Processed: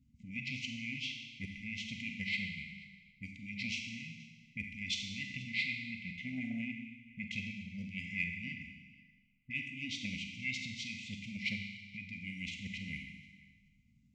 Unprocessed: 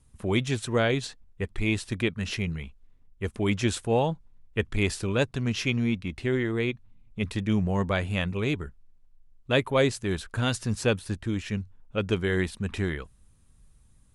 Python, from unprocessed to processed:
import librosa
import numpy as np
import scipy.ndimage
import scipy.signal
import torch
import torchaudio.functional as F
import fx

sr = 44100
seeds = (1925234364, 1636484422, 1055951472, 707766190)

p1 = scipy.signal.sosfilt(scipy.signal.butter(2, 8800.0, 'lowpass', fs=sr, output='sos'), x)
p2 = fx.over_compress(p1, sr, threshold_db=-28.0, ratio=-0.5)
p3 = p1 + F.gain(torch.from_numpy(p2), 2.0).numpy()
p4 = fx.auto_wah(p3, sr, base_hz=440.0, top_hz=1800.0, q=17.0, full_db=-26.5, direction='up')
p5 = fx.formant_shift(p4, sr, semitones=-5)
p6 = fx.brickwall_bandstop(p5, sr, low_hz=270.0, high_hz=2000.0)
p7 = p6 + 10.0 ** (-22.5 / 20.0) * np.pad(p6, (int(481 * sr / 1000.0), 0))[:len(p6)]
p8 = fx.rev_schroeder(p7, sr, rt60_s=1.4, comb_ms=31, drr_db=3.0)
p9 = fx.transformer_sat(p8, sr, knee_hz=500.0)
y = F.gain(torch.from_numpy(p9), 17.5).numpy()